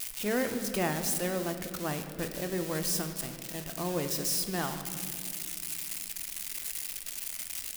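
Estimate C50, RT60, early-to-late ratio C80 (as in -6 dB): 8.5 dB, 2.6 s, 9.0 dB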